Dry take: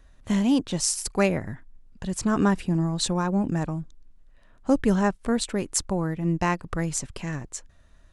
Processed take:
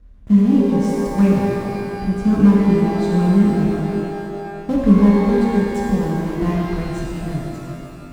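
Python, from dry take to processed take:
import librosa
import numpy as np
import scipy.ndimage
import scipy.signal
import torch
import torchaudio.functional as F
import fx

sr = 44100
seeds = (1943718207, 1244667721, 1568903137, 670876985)

y = fx.block_float(x, sr, bits=3)
y = scipy.signal.sosfilt(scipy.signal.butter(2, 42.0, 'highpass', fs=sr, output='sos'), y)
y = fx.tilt_eq(y, sr, slope=-4.0)
y = fx.notch(y, sr, hz=910.0, q=10.0)
y = fx.small_body(y, sr, hz=(210.0, 1000.0), ring_ms=45, db=7)
y = fx.rev_shimmer(y, sr, seeds[0], rt60_s=2.5, semitones=12, shimmer_db=-8, drr_db=-3.5)
y = y * 10.0 ** (-8.5 / 20.0)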